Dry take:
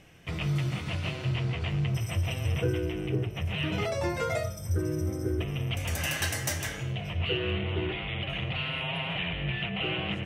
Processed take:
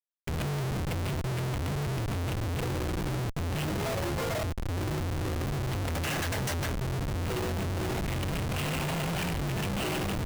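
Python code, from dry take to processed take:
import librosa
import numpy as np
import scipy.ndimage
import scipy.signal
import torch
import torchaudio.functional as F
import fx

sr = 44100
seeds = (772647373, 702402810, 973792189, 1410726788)

y = fx.band_shelf(x, sr, hz=4400.0, db=-15.0, octaves=1.2, at=(6.82, 7.36))
y = fx.schmitt(y, sr, flips_db=-31.5)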